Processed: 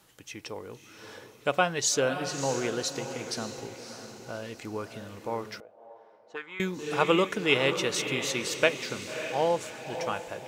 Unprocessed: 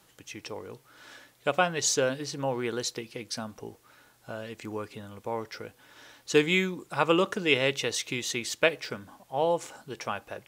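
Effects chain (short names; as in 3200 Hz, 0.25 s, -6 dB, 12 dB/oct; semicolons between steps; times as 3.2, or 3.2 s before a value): diffused feedback echo 0.597 s, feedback 45%, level -9 dB; 5.6–6.6 auto-wah 620–1400 Hz, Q 4.1, up, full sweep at -17.5 dBFS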